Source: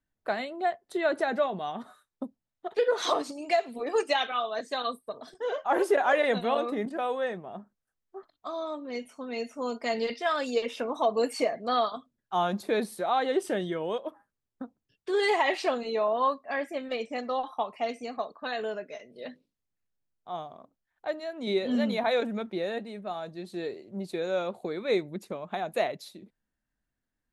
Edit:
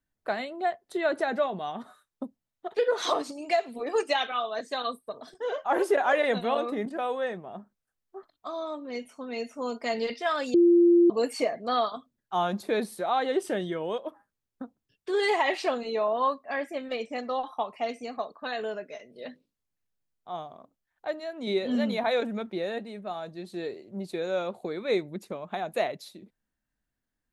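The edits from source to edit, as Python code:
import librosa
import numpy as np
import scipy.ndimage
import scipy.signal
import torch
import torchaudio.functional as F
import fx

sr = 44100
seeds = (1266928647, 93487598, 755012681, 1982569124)

y = fx.edit(x, sr, fx.bleep(start_s=10.54, length_s=0.56, hz=345.0, db=-15.0), tone=tone)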